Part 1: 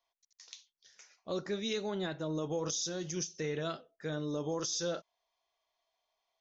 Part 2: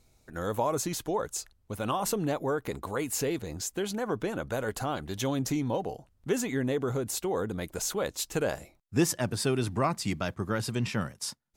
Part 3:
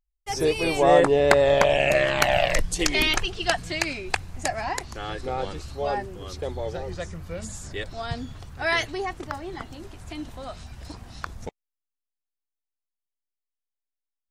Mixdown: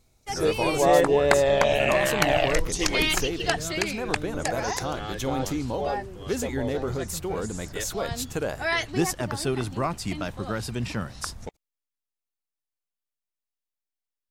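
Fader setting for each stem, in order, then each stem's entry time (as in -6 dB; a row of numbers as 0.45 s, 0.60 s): -1.5 dB, 0.0 dB, -2.0 dB; 0.00 s, 0.00 s, 0.00 s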